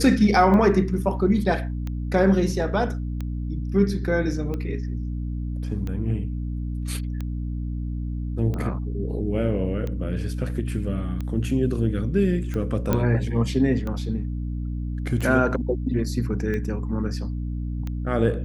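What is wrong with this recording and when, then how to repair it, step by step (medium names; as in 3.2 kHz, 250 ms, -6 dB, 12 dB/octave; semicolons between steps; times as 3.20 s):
hum 60 Hz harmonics 5 -28 dBFS
tick 45 rpm -19 dBFS
12.93 s: pop -9 dBFS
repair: de-click; de-hum 60 Hz, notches 5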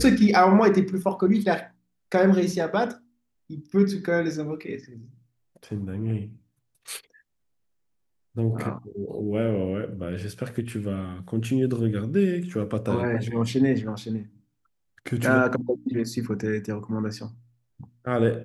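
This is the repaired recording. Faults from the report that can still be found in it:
nothing left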